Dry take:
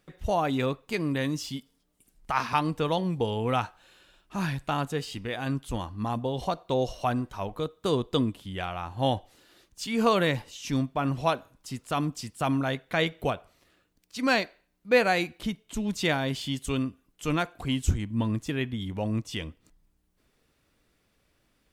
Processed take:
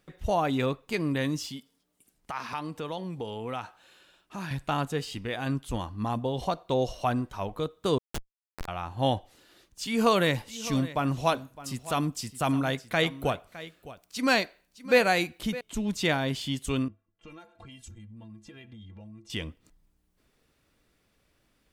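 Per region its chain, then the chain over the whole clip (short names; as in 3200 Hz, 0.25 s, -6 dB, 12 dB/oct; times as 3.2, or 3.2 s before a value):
1.46–4.51 HPF 170 Hz 6 dB/oct + compressor 2:1, threshold -36 dBFS
7.98–8.68 self-modulated delay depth 0.33 ms + tilt +4.5 dB/oct + Schmitt trigger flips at -17 dBFS
9.86–15.61 high shelf 6000 Hz +6.5 dB + echo 0.611 s -16.5 dB
16.88–19.3 low-pass opened by the level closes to 1600 Hz, open at -24 dBFS + metallic resonator 100 Hz, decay 0.2 s, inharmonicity 0.03 + compressor 10:1, threshold -43 dBFS
whole clip: dry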